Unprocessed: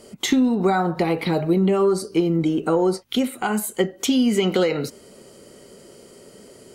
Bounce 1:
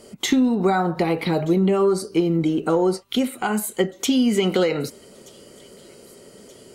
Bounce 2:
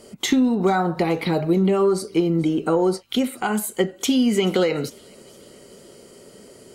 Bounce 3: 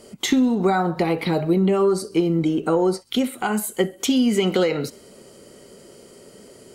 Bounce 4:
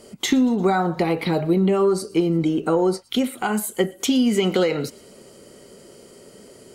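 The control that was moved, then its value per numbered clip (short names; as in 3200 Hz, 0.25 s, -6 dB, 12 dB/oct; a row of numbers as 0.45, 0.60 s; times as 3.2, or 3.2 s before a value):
thin delay, time: 1228, 433, 65, 116 ms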